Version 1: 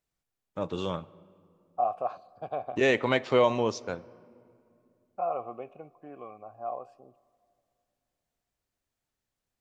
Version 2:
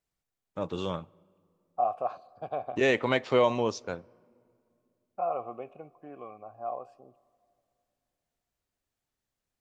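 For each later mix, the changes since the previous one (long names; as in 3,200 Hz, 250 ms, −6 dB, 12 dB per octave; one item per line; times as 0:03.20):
first voice: send −8.0 dB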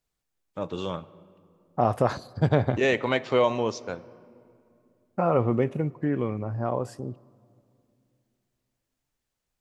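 first voice: send +11.0 dB
second voice: remove formant filter a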